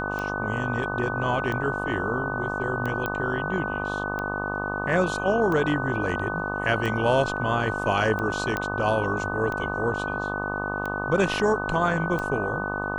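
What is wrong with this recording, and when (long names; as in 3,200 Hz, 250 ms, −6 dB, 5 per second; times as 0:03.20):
mains buzz 50 Hz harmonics 25 −31 dBFS
scratch tick 45 rpm −18 dBFS
whistle 1,500 Hz −30 dBFS
0:03.06: click −14 dBFS
0:08.57: click −13 dBFS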